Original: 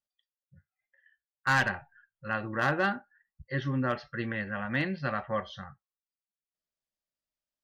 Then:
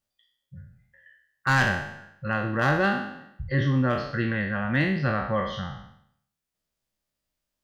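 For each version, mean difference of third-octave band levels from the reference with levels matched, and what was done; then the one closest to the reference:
5.0 dB: peak hold with a decay on every bin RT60 0.67 s
low-shelf EQ 250 Hz +8.5 dB
in parallel at +1 dB: downward compressor, threshold −38 dBFS, peak gain reduction 18 dB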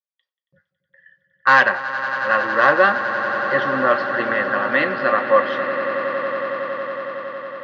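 8.5 dB: noise gate with hold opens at −59 dBFS
loudspeaker in its box 310–5,000 Hz, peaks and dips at 540 Hz +9 dB, 1,100 Hz +9 dB, 1,800 Hz +5 dB
echo that builds up and dies away 92 ms, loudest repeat 8, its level −15 dB
level +8.5 dB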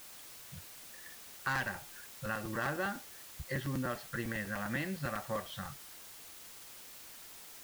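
12.0 dB: downward compressor 2.5 to 1, threshold −50 dBFS, peak gain reduction 18.5 dB
background noise white −60 dBFS
regular buffer underruns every 0.10 s, samples 256, repeat
level +8.5 dB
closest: first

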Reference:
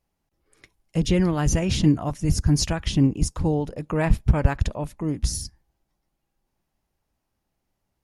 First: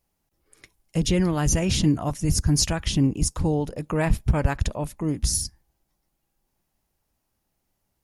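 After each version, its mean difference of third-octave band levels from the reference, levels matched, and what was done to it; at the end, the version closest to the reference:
2.0 dB: in parallel at 0 dB: brickwall limiter −16 dBFS, peak gain reduction 11.5 dB
on the sum: high-shelf EQ 6,600 Hz +9 dB
level −5.5 dB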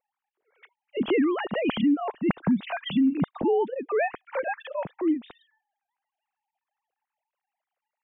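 13.5 dB: three sine waves on the formant tracks
brickwall limiter −16 dBFS, peak gain reduction 11.5 dB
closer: first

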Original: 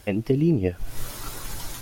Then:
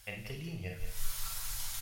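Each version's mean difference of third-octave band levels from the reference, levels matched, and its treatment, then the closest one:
10.0 dB: guitar amp tone stack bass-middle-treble 10-0-10
on a send: single-tap delay 174 ms −9 dB
on the sum: four-comb reverb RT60 0.39 s, combs from 33 ms, DRR 2.5 dB
level −3.5 dB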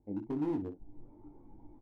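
14.0 dB: formant resonators in series u
gain into a clipping stage and back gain 24.5 dB
on a send: ambience of single reflections 20 ms −4 dB, 61 ms −11.5 dB
on the sum: level −7 dB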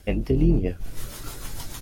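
2.5 dB: sub-octave generator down 2 octaves, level +1 dB
rotating-speaker cabinet horn 6.7 Hz
double-tracking delay 23 ms −12 dB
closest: third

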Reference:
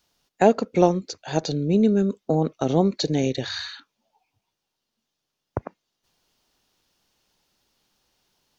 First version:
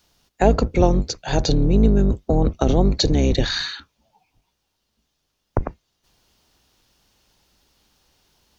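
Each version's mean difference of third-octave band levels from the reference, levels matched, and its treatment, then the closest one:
5.0 dB: sub-octave generator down 2 octaves, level +4 dB
in parallel at −2.5 dB: compressor whose output falls as the input rises −22 dBFS, ratio −0.5
on the sum: level −1 dB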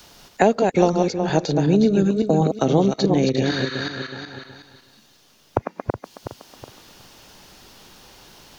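6.5 dB: feedback delay that plays each chunk backwards 185 ms, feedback 42%, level −5 dB
multiband upward and downward compressor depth 70%
level +2.5 dB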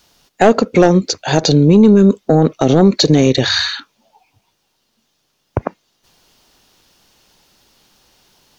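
3.0 dB: in parallel at −11 dB: sine wavefolder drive 9 dB, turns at −2.5 dBFS
on the sum: boost into a limiter +9.5 dB
level −1 dB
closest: third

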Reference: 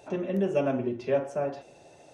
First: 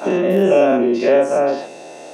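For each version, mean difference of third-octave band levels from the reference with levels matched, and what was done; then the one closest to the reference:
5.0 dB: every bin's largest magnitude spread in time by 120 ms
high-pass filter 200 Hz 24 dB per octave
in parallel at +3 dB: downward compressor, threshold −30 dBFS, peak gain reduction 12 dB
on the sum: level +5.5 dB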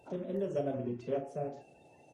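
3.0 dB: spectral magnitudes quantised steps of 30 dB
dynamic equaliser 2,500 Hz, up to −7 dB, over −50 dBFS, Q 0.88
double-tracking delay 33 ms −8 dB
level −7 dB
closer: second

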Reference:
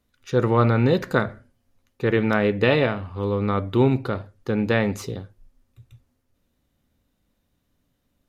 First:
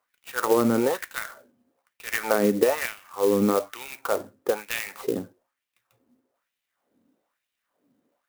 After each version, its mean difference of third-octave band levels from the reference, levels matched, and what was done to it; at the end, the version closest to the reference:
13.5 dB: auto-filter high-pass sine 1.1 Hz 230–2,800 Hz
downward compressor 10 to 1, threshold −18 dBFS, peak gain reduction 9 dB
high-shelf EQ 2,600 Hz −12 dB
converter with an unsteady clock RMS 0.047 ms
level +2.5 dB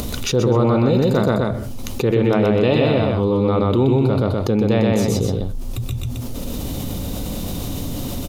7.5 dB: parametric band 1,700 Hz −13 dB 0.98 octaves
upward compression, threshold −37 dBFS
on a send: loudspeakers that aren't time-aligned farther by 43 metres −1 dB, 86 metres −9 dB
on the sum: envelope flattener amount 70%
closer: second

